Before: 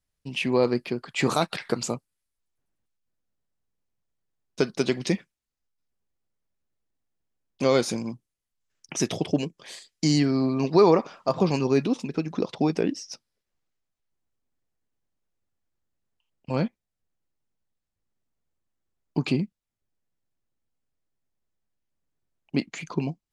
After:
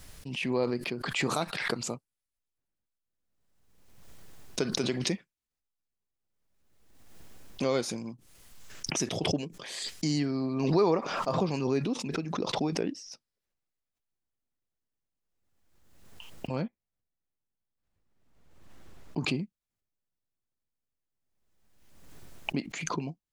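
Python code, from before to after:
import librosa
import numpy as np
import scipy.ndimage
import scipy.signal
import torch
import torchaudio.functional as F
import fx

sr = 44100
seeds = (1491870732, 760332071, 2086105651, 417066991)

y = fx.high_shelf(x, sr, hz=fx.line((16.61, 3100.0), (19.17, 5900.0)), db=-11.0, at=(16.61, 19.17), fade=0.02)
y = fx.pre_swell(y, sr, db_per_s=39.0)
y = F.gain(torch.from_numpy(y), -7.5).numpy()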